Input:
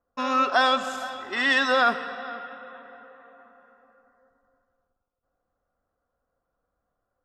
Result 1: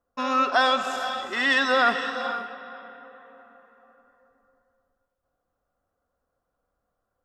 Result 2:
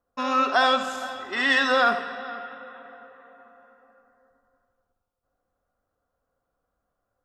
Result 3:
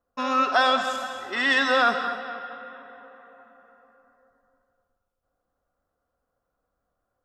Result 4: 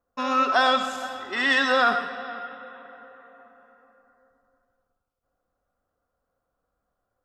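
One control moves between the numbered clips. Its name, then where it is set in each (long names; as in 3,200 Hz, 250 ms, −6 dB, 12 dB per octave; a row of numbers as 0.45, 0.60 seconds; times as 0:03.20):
reverb whose tail is shaped and stops, gate: 540, 100, 270, 150 milliseconds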